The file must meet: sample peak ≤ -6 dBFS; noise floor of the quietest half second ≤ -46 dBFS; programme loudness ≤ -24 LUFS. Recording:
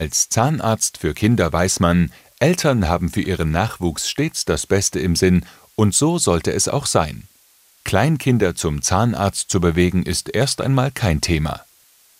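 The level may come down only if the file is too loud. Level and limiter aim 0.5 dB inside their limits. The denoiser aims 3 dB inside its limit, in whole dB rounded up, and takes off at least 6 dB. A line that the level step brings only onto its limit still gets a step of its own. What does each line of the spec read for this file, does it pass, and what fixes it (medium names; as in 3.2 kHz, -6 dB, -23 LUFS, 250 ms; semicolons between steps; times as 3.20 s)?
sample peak -1.5 dBFS: fail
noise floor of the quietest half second -54 dBFS: pass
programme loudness -18.5 LUFS: fail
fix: trim -6 dB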